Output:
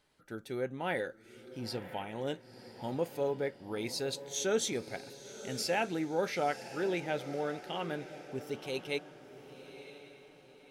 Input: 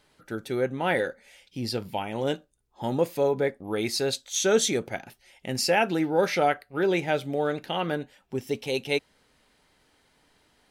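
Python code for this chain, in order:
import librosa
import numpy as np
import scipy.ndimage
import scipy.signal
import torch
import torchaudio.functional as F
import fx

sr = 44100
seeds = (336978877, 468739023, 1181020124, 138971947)

y = fx.echo_diffused(x, sr, ms=1007, feedback_pct=42, wet_db=-13)
y = y * 10.0 ** (-9.0 / 20.0)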